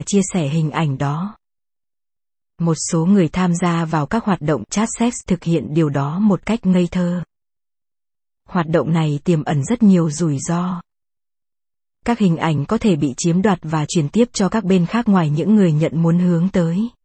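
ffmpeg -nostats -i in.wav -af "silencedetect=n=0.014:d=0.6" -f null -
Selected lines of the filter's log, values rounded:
silence_start: 1.34
silence_end: 2.60 | silence_duration: 1.26
silence_start: 7.23
silence_end: 8.49 | silence_duration: 1.26
silence_start: 10.81
silence_end: 12.06 | silence_duration: 1.25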